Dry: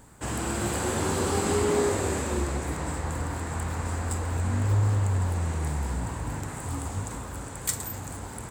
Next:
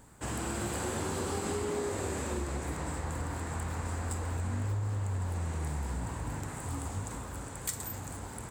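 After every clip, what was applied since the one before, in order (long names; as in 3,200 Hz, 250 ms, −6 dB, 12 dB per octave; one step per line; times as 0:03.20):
downward compressor, threshold −26 dBFS, peak gain reduction 7 dB
level −4 dB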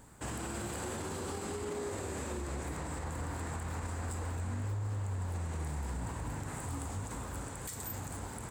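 brickwall limiter −30 dBFS, peak gain reduction 11 dB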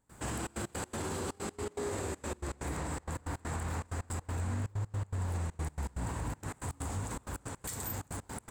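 gate pattern ".xxxx.x.x" 161 BPM −24 dB
level +2.5 dB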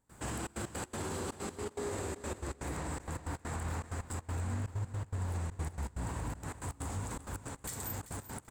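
repeating echo 387 ms, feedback 23%, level −14 dB
level −1.5 dB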